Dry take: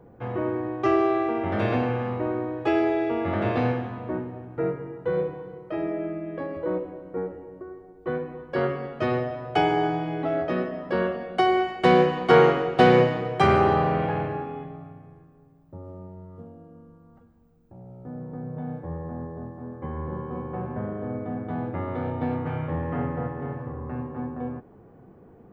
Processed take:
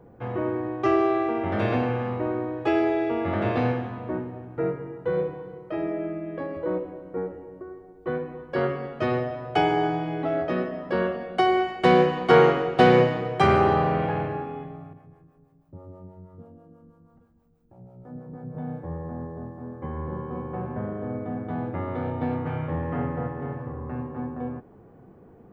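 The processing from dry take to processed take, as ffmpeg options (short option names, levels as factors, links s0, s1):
-filter_complex "[0:a]asettb=1/sr,asplit=3[s0][s1][s2];[s0]atrim=end=14.934[s3];[s1]atrim=start=14.93:end=18.55,asetpts=PTS-STARTPTS,afade=t=in:d=0.004:c=qsin,afade=t=out:st=3.616:d=0.004:c=qsin,acrossover=split=420[s4][s5];[s4]aeval=exprs='val(0)*(1-0.7/2+0.7/2*cos(2*PI*6.2*n/s))':c=same[s6];[s5]aeval=exprs='val(0)*(1-0.7/2-0.7/2*cos(2*PI*6.2*n/s))':c=same[s7];[s6][s7]amix=inputs=2:normalize=0[s8];[s2]atrim=start=18.546[s9];[s3][s8]acrossfade=d=0.004:c1=hsin:c2=qsin[s10];[s10][s9]acrossfade=d=0.004:c1=qsin:c2=hsin"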